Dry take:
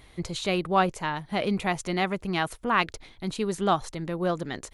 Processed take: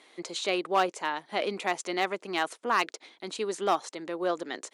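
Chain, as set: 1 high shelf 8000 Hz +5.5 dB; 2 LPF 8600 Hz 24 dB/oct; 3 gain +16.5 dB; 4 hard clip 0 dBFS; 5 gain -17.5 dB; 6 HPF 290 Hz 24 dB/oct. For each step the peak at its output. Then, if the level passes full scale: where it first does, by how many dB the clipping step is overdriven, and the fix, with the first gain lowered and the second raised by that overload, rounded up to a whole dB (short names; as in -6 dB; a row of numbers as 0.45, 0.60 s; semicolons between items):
-7.5, -7.5, +9.0, 0.0, -17.5, -12.0 dBFS; step 3, 9.0 dB; step 3 +7.5 dB, step 5 -8.5 dB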